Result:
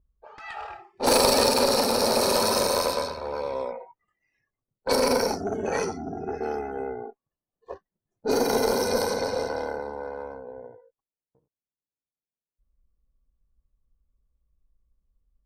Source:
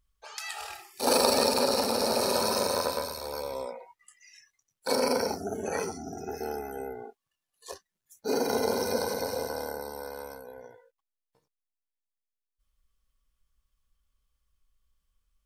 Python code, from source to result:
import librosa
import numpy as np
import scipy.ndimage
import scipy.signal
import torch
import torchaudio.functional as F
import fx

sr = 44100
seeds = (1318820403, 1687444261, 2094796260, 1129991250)

y = fx.diode_clip(x, sr, knee_db=-22.0)
y = fx.env_lowpass(y, sr, base_hz=480.0, full_db=-26.0)
y = y * 10.0 ** (6.0 / 20.0)